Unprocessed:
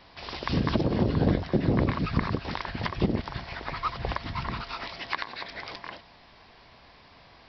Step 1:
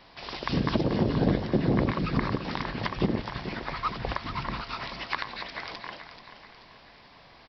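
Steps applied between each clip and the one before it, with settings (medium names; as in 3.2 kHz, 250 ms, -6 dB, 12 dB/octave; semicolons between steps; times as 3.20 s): peaking EQ 78 Hz -14.5 dB 0.32 oct; feedback delay 434 ms, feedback 47%, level -11 dB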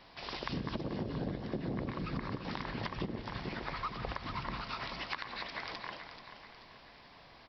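on a send at -13.5 dB: reverberation RT60 0.75 s, pre-delay 123 ms; on the sum: compression 5:1, threshold -31 dBFS, peak gain reduction 12 dB; trim -3.5 dB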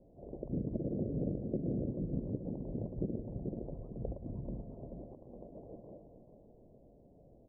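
steep low-pass 610 Hz 48 dB/octave; trim +2 dB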